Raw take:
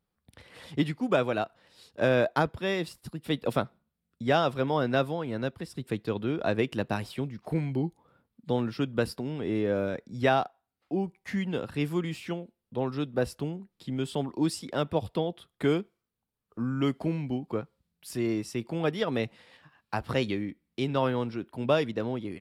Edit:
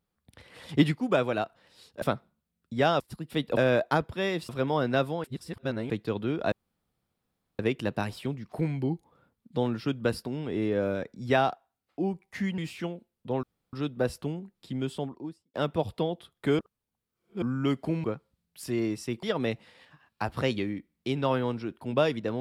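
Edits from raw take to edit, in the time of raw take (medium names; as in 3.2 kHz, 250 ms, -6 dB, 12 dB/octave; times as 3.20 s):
0.69–0.95 s: gain +5 dB
2.02–2.94 s: swap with 3.51–4.49 s
5.24–5.90 s: reverse
6.52 s: insert room tone 1.07 s
11.51–12.05 s: delete
12.90 s: insert room tone 0.30 s
13.91–14.71 s: studio fade out
15.76–16.59 s: reverse
17.21–17.51 s: delete
18.70–18.95 s: delete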